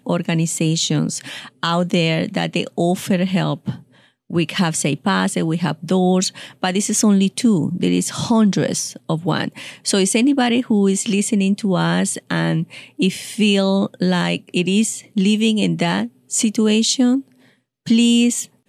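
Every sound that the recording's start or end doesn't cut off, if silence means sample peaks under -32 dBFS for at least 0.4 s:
4.3–17.21

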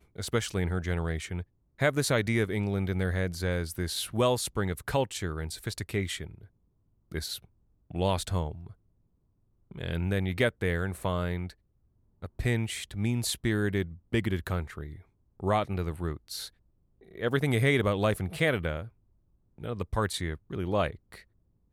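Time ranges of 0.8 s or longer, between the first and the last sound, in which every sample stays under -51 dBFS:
8.73–9.71

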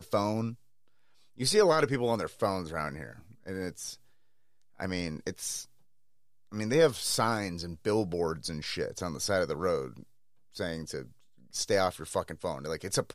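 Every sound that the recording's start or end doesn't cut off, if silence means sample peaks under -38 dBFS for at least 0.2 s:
1.4–3.11
3.47–3.94
4.8–5.63
6.53–10
10.57–11.03

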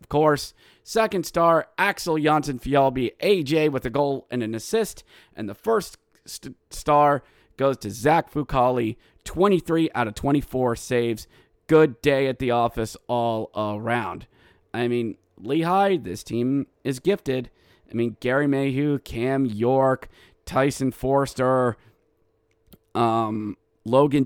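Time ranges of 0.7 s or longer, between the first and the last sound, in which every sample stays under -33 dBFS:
21.73–22.73

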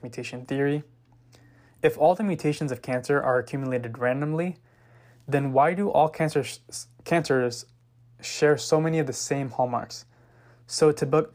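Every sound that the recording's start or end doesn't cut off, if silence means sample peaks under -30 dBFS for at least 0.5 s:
1.84–4.51
5.29–7.61
8.24–9.98

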